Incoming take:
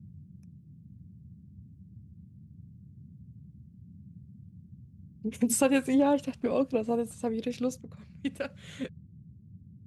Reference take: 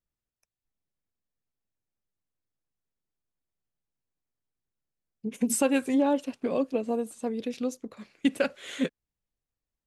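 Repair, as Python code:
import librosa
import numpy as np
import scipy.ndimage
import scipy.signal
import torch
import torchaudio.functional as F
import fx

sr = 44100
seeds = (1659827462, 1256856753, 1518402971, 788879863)

y = fx.noise_reduce(x, sr, print_start_s=9.0, print_end_s=9.5, reduce_db=30.0)
y = fx.gain(y, sr, db=fx.steps((0.0, 0.0), (7.81, 8.5)))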